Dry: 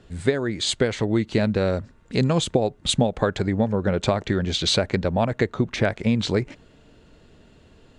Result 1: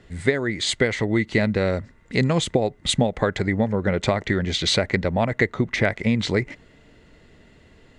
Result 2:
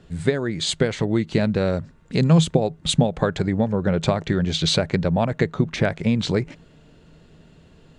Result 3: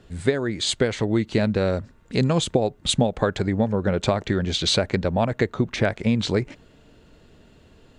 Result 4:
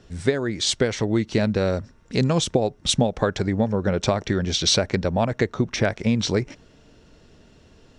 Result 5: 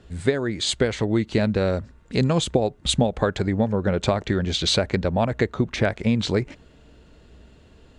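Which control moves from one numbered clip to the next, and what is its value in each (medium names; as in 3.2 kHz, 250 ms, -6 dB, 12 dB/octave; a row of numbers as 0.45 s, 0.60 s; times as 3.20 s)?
peaking EQ, frequency: 2 kHz, 160 Hz, 14 kHz, 5.6 kHz, 62 Hz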